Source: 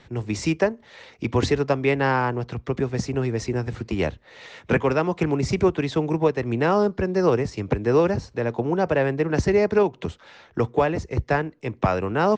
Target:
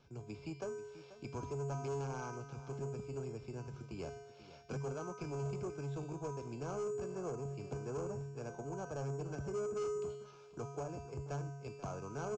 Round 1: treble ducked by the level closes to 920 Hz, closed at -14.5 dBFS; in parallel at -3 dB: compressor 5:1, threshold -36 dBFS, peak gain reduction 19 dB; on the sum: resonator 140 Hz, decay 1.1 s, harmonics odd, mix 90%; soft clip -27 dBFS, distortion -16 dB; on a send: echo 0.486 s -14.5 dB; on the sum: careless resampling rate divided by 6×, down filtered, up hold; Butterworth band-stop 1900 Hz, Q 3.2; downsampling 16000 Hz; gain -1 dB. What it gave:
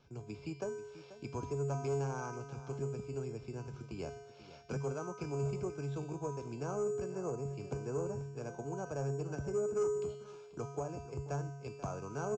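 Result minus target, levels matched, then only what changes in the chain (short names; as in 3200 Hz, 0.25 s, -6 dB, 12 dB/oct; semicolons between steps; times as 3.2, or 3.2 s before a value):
compressor: peak gain reduction -9 dB; soft clip: distortion -7 dB
change: compressor 5:1, threshold -47 dBFS, peak gain reduction 28 dB; change: soft clip -34.5 dBFS, distortion -9 dB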